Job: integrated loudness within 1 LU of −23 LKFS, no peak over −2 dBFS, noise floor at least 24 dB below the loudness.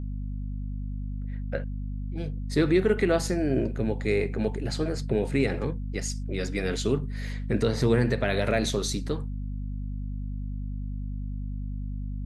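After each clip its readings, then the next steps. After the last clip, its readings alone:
mains hum 50 Hz; hum harmonics up to 250 Hz; level of the hum −30 dBFS; integrated loudness −29.0 LKFS; sample peak −11.0 dBFS; target loudness −23.0 LKFS
→ mains-hum notches 50/100/150/200/250 Hz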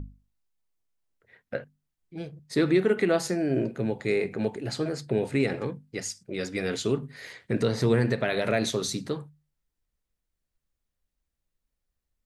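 mains hum none found; integrated loudness −28.0 LKFS; sample peak −11.5 dBFS; target loudness −23.0 LKFS
→ level +5 dB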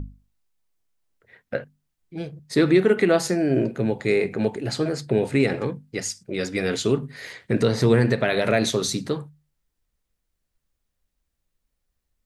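integrated loudness −23.0 LKFS; sample peak −6.5 dBFS; background noise floor −79 dBFS

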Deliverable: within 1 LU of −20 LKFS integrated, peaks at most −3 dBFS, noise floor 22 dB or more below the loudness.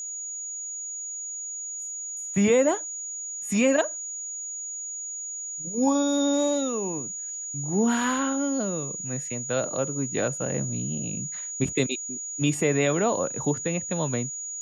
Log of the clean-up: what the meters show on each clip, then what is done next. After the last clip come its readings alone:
crackle rate 42 per second; interfering tone 6,800 Hz; level of the tone −32 dBFS; integrated loudness −27.0 LKFS; sample peak −10.5 dBFS; target loudness −20.0 LKFS
→ click removal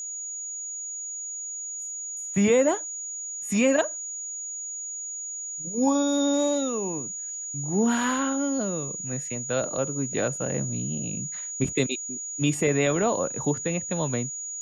crackle rate 0.068 per second; interfering tone 6,800 Hz; level of the tone −32 dBFS
→ notch filter 6,800 Hz, Q 30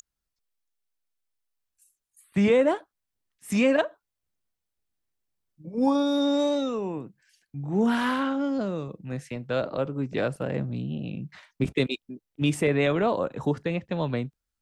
interfering tone none found; integrated loudness −26.5 LKFS; sample peak −11.0 dBFS; target loudness −20.0 LKFS
→ level +6.5 dB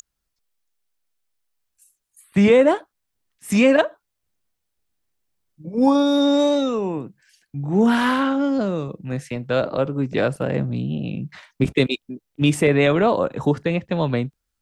integrated loudness −20.0 LKFS; sample peak −4.5 dBFS; background noise floor −78 dBFS

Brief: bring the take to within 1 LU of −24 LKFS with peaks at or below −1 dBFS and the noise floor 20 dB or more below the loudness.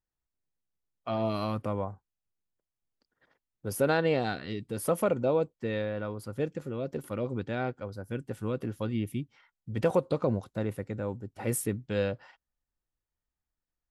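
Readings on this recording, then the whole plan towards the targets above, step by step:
integrated loudness −32.0 LKFS; sample peak −13.0 dBFS; target loudness −24.0 LKFS
→ level +8 dB

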